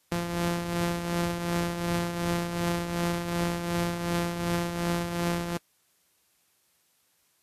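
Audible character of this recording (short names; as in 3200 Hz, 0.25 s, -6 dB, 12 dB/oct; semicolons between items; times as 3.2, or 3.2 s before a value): a buzz of ramps at a fixed pitch in blocks of 256 samples; tremolo triangle 2.7 Hz, depth 60%; a quantiser's noise floor 12-bit, dither triangular; Vorbis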